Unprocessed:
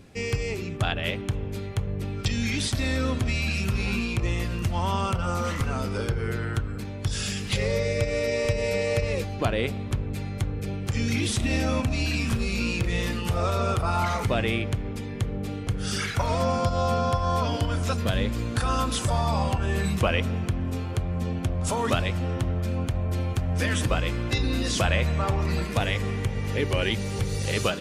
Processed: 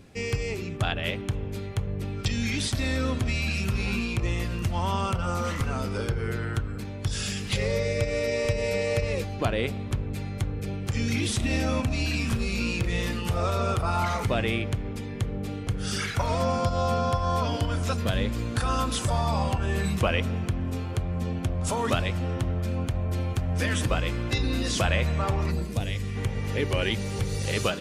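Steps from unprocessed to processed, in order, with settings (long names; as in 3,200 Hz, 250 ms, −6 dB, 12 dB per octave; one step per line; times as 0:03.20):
0:25.50–0:26.15: parametric band 2,800 Hz → 600 Hz −12 dB 2.7 octaves
level −1 dB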